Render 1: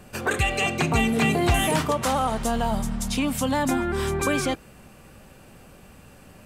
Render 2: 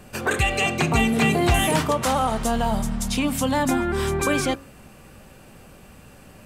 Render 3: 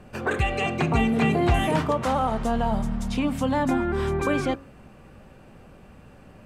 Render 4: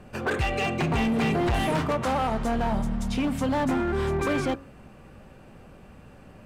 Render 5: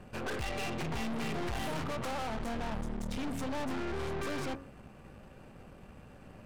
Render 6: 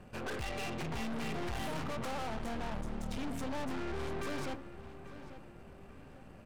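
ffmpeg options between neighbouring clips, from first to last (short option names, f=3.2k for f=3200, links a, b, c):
-af "bandreject=f=91.36:t=h:w=4,bandreject=f=182.72:t=h:w=4,bandreject=f=274.08:t=h:w=4,bandreject=f=365.44:t=h:w=4,bandreject=f=456.8:t=h:w=4,bandreject=f=548.16:t=h:w=4,bandreject=f=639.52:t=h:w=4,bandreject=f=730.88:t=h:w=4,bandreject=f=822.24:t=h:w=4,bandreject=f=913.6:t=h:w=4,bandreject=f=1.00496k:t=h:w=4,bandreject=f=1.09632k:t=h:w=4,bandreject=f=1.18768k:t=h:w=4,bandreject=f=1.27904k:t=h:w=4,bandreject=f=1.3704k:t=h:w=4,bandreject=f=1.46176k:t=h:w=4,bandreject=f=1.55312k:t=h:w=4,bandreject=f=1.64448k:t=h:w=4,bandreject=f=1.73584k:t=h:w=4,volume=2dB"
-af "lowpass=f=1.7k:p=1,volume=-1dB"
-af "asoftclip=type=hard:threshold=-21dB"
-af "aeval=exprs='(tanh(56.2*val(0)+0.7)-tanh(0.7))/56.2':c=same"
-filter_complex "[0:a]asplit=2[a][b];[b]adelay=842,lowpass=f=3.2k:p=1,volume=-13dB,asplit=2[c][d];[d]adelay=842,lowpass=f=3.2k:p=1,volume=0.43,asplit=2[e][f];[f]adelay=842,lowpass=f=3.2k:p=1,volume=0.43,asplit=2[g][h];[h]adelay=842,lowpass=f=3.2k:p=1,volume=0.43[i];[a][c][e][g][i]amix=inputs=5:normalize=0,volume=-2.5dB"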